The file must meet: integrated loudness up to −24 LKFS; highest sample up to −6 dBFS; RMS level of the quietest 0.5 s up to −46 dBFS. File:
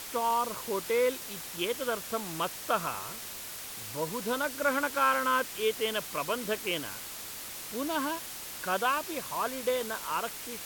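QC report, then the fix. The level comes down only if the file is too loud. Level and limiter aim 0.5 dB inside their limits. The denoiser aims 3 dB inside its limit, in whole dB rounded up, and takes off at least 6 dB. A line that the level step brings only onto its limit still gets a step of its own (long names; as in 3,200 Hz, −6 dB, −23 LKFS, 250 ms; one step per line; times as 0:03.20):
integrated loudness −31.5 LKFS: in spec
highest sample −14.5 dBFS: in spec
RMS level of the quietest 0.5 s −42 dBFS: out of spec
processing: broadband denoise 7 dB, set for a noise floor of −42 dBFS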